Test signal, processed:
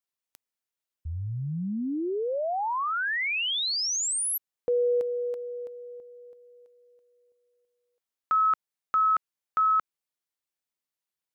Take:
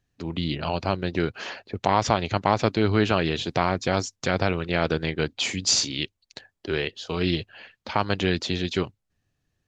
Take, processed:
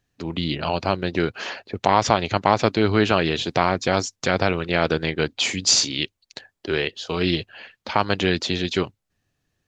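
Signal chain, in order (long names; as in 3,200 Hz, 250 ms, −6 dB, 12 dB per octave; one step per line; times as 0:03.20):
low-shelf EQ 160 Hz −5.5 dB
level +4 dB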